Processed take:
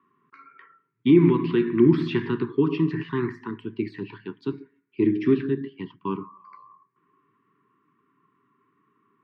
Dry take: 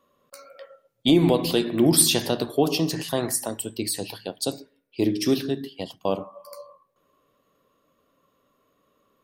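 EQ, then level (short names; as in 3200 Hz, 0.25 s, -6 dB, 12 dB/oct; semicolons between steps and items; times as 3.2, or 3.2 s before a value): elliptic band-pass 120–2100 Hz, stop band 60 dB; elliptic band-stop 400–970 Hz, stop band 40 dB; +3.5 dB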